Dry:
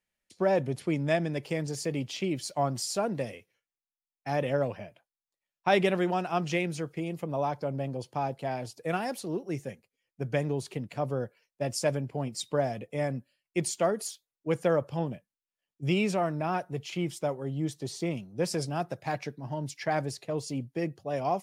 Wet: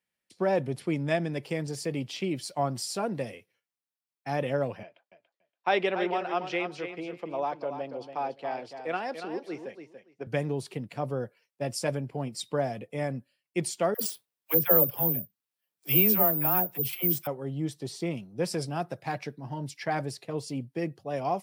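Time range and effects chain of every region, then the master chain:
4.83–10.27 s: three-band isolator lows -19 dB, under 270 Hz, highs -23 dB, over 5.6 kHz + feedback delay 285 ms, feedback 16%, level -9 dB
13.94–17.27 s: phase dispersion lows, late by 77 ms, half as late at 590 Hz + careless resampling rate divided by 3×, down none, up zero stuff
whole clip: high-pass 93 Hz; peaking EQ 6.6 kHz -6 dB 0.22 oct; band-stop 610 Hz, Q 19

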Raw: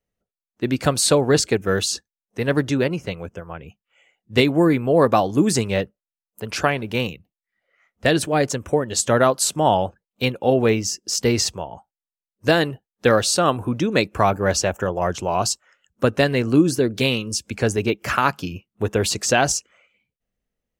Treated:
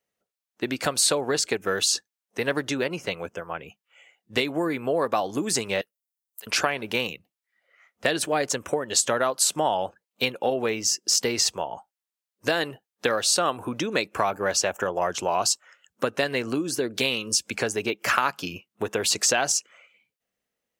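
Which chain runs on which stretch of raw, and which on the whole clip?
5.81–6.47 s: de-esser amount 50% + differentiator
whole clip: compression 5:1, threshold -22 dBFS; high-pass 590 Hz 6 dB/octave; trim +4.5 dB

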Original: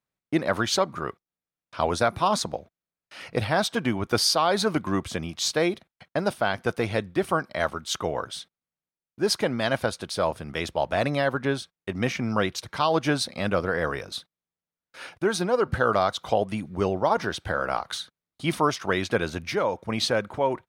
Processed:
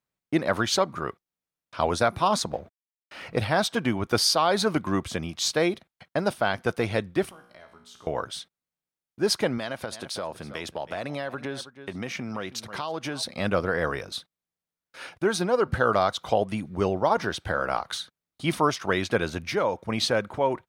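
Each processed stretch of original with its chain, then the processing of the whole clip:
2.50–3.37 s: companding laws mixed up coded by mu + treble shelf 3.7 kHz -10 dB
7.29–8.07 s: compression 4:1, threshold -38 dBFS + feedback comb 60 Hz, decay 0.77 s, mix 80%
9.58–13.23 s: delay 320 ms -19.5 dB + compression 4:1, threshold -28 dBFS + high-pass 140 Hz 6 dB/octave
whole clip: none

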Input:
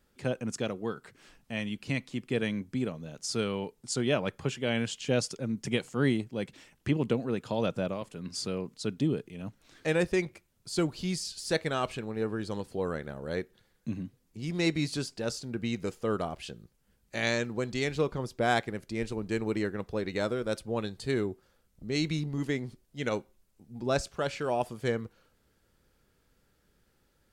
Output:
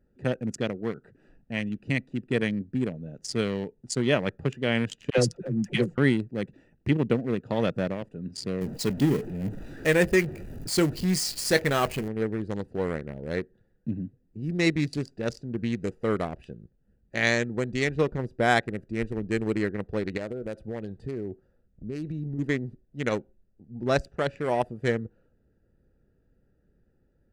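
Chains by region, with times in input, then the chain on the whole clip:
5.10–5.98 s: bass shelf 170 Hz +3.5 dB + comb 5.7 ms, depth 43% + phase dispersion lows, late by 83 ms, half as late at 600 Hz
8.61–12.08 s: jump at every zero crossing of -34.5 dBFS + treble shelf 10 kHz +8 dB + doubling 21 ms -11.5 dB
20.17–22.39 s: dynamic bell 650 Hz, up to +4 dB, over -40 dBFS, Q 1.2 + compression 4:1, threshold -33 dBFS
whole clip: local Wiener filter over 41 samples; peaking EQ 1.9 kHz +7 dB 0.28 oct; band-stop 3.7 kHz, Q 25; trim +4.5 dB

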